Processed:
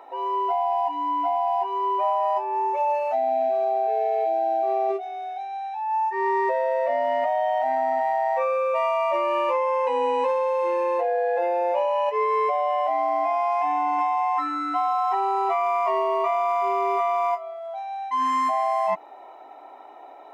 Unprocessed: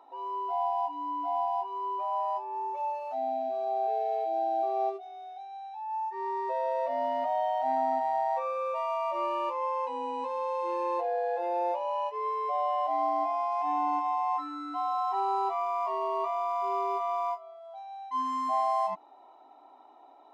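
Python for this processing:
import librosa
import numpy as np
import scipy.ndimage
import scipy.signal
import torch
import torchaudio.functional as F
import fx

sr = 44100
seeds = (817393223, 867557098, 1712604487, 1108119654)

p1 = fx.graphic_eq(x, sr, hz=(250, 500, 1000, 2000, 4000), db=(-7, 5, -5, 9, -6))
p2 = fx.over_compress(p1, sr, threshold_db=-33.0, ratio=-0.5)
p3 = p1 + (p2 * librosa.db_to_amplitude(2.0))
y = p3 * librosa.db_to_amplitude(2.5)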